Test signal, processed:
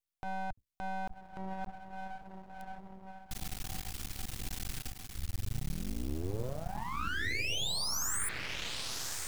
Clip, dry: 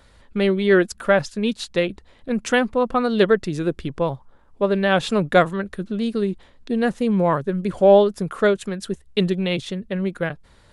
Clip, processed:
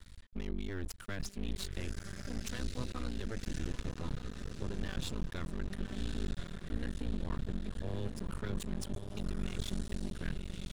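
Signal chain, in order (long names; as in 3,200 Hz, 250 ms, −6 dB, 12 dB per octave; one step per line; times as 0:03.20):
sub-octave generator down 2 octaves, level −1 dB
guitar amp tone stack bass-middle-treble 6-0-2
reversed playback
downward compressor 6 to 1, threshold −45 dBFS
reversed playback
brickwall limiter −43.5 dBFS
on a send: feedback delay with all-pass diffusion 1,109 ms, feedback 44%, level −5 dB
on the sum: half-wave rectification
level +16 dB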